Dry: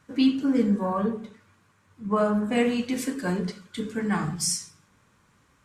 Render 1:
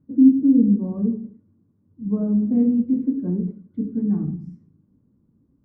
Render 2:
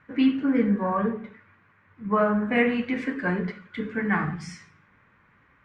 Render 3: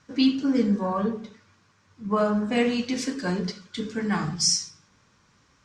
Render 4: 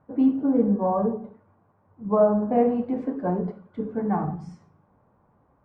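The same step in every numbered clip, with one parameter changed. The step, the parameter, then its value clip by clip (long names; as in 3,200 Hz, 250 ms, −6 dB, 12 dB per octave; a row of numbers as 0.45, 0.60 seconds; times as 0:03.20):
low-pass with resonance, frequency: 270, 2,000, 5,500, 750 Hertz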